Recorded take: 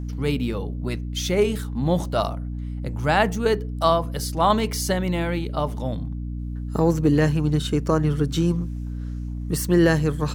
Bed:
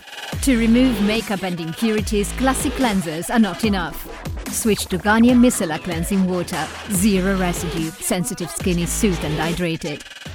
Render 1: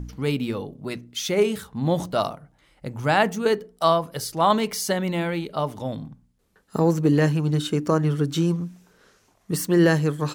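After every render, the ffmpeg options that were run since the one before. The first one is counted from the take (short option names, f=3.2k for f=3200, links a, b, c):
-af "bandreject=f=60:t=h:w=4,bandreject=f=120:t=h:w=4,bandreject=f=180:t=h:w=4,bandreject=f=240:t=h:w=4,bandreject=f=300:t=h:w=4"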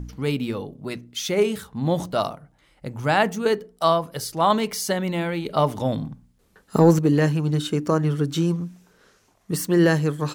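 -filter_complex "[0:a]asettb=1/sr,asplit=3[a][b][c];[a]atrim=end=5.454[d];[b]atrim=start=5.45:end=6.99,asetpts=PTS-STARTPTS,afade=t=in:d=0.004:c=qsin,afade=t=out:st=1.536:d=0.004:c=qsin,acontrast=48[e];[c]atrim=start=6.986[f];[d][e]acrossfade=d=0.004:c1=hsin:c2=qsin[g];[g][f]acrossfade=d=0.004:c1=qsin:c2=hsin"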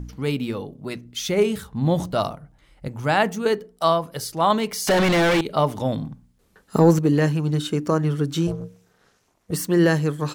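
-filter_complex "[0:a]asettb=1/sr,asplit=3[a][b][c];[a]atrim=end=1.054[d];[b]atrim=start=1.05:end=2.88,asetpts=PTS-STARTPTS,afade=t=in:d=0.004:c=qsin,afade=t=out:st=1.826:d=0.004:c=qsin,lowshelf=f=110:g=10.5[e];[c]atrim=start=2.876[f];[d][e]acrossfade=d=0.004:c1=hsin:c2=qsin[g];[g][f]acrossfade=d=0.004:c1=qsin:c2=hsin,asettb=1/sr,asplit=3[h][i][j];[h]atrim=end=4.874[k];[i]atrim=start=4.87:end=5.41,asetpts=PTS-STARTPTS,afade=t=in:d=0.004:c=qsin,afade=t=out:st=0.536:d=0.004:c=qsin,asplit=2[l][m];[m]highpass=f=720:p=1,volume=38dB,asoftclip=type=tanh:threshold=-11.5dB[n];[l][n]amix=inputs=2:normalize=0,lowpass=f=2.8k:p=1,volume=-6dB[o];[j]atrim=start=5.406[p];[k][o]acrossfade=d=0.004:c1=hsin:c2=qsin[q];[q][p]acrossfade=d=0.004:c1=qsin:c2=hsin,asettb=1/sr,asplit=3[r][s][t];[r]atrim=end=8.474[u];[s]atrim=start=8.47:end=9.52,asetpts=PTS-STARTPTS,afade=t=in:d=0.004:c=qsin,afade=t=out:st=1.046:d=0.004:c=qsin,tremolo=f=290:d=1[v];[t]atrim=start=9.516[w];[u][v]acrossfade=d=0.004:c1=hsin:c2=qsin[x];[x][w]acrossfade=d=0.004:c1=qsin:c2=hsin"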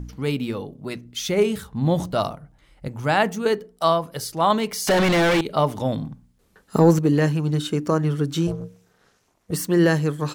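-af anull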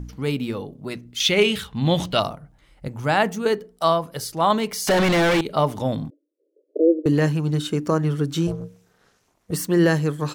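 -filter_complex "[0:a]asettb=1/sr,asplit=3[a][b][c];[a]atrim=end=1.204[d];[b]atrim=start=1.2:end=2.2,asetpts=PTS-STARTPTS,afade=t=in:d=0.004:c=qsin,afade=t=out:st=0.996:d=0.004:c=qsin,equalizer=f=3k:w=1:g=14.5[e];[c]atrim=start=2.196[f];[d][e]acrossfade=d=0.004:c1=hsin:c2=qsin[g];[g][f]acrossfade=d=0.004:c1=qsin:c2=hsin,asettb=1/sr,asplit=3[h][i][j];[h]atrim=end=6.104[k];[i]atrim=start=6.1:end=7.06,asetpts=PTS-STARTPTS,afade=t=in:d=0.004:c=qsin,afade=t=out:st=0.956:d=0.004:c=qsin,asuperpass=centerf=420:order=20:qfactor=1.3[l];[j]atrim=start=7.056[m];[k][l]acrossfade=d=0.004:c1=hsin:c2=qsin[n];[n][m]acrossfade=d=0.004:c1=qsin:c2=hsin"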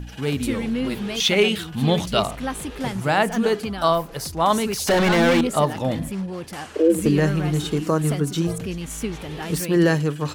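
-filter_complex "[1:a]volume=-10dB[a];[0:a][a]amix=inputs=2:normalize=0"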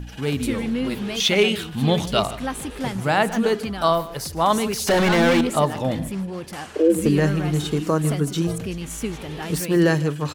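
-af "aecho=1:1:154:0.119"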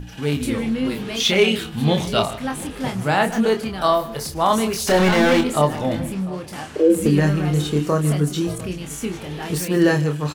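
-filter_complex "[0:a]asplit=2[a][b];[b]adelay=27,volume=-5.5dB[c];[a][c]amix=inputs=2:normalize=0,asplit=2[d][e];[e]adelay=699.7,volume=-20dB,highshelf=f=4k:g=-15.7[f];[d][f]amix=inputs=2:normalize=0"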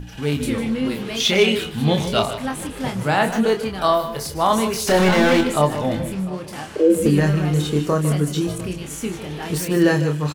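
-af "aecho=1:1:152:0.237"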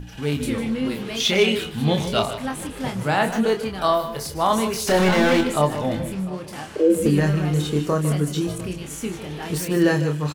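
-af "volume=-2dB"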